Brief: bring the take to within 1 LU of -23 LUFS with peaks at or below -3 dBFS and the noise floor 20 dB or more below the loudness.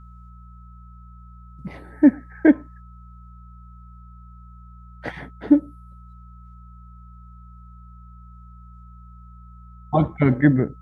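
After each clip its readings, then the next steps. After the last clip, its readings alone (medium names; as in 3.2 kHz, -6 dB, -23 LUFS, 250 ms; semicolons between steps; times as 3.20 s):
hum 60 Hz; highest harmonic 180 Hz; hum level -42 dBFS; steady tone 1.3 kHz; tone level -51 dBFS; loudness -20.0 LUFS; peak level -3.0 dBFS; loudness target -23.0 LUFS
-> de-hum 60 Hz, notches 3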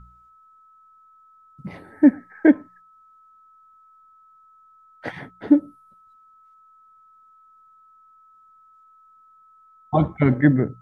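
hum not found; steady tone 1.3 kHz; tone level -51 dBFS
-> band-stop 1.3 kHz, Q 30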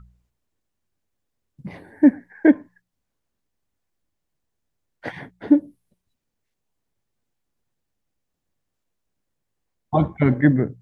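steady tone not found; loudness -19.5 LUFS; peak level -3.5 dBFS; loudness target -23.0 LUFS
-> trim -3.5 dB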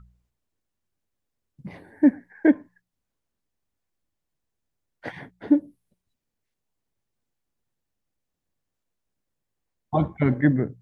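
loudness -23.0 LUFS; peak level -7.0 dBFS; noise floor -82 dBFS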